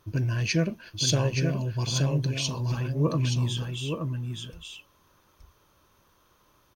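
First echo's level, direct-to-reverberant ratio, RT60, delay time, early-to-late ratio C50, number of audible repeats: −5.0 dB, no reverb audible, no reverb audible, 874 ms, no reverb audible, 1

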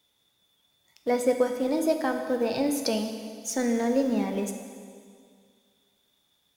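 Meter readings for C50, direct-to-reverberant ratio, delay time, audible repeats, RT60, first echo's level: 6.5 dB, 5.0 dB, no echo audible, no echo audible, 2.1 s, no echo audible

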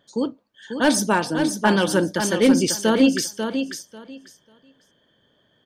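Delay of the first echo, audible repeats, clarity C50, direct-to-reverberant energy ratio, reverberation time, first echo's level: 543 ms, 2, no reverb audible, no reverb audible, no reverb audible, −7.0 dB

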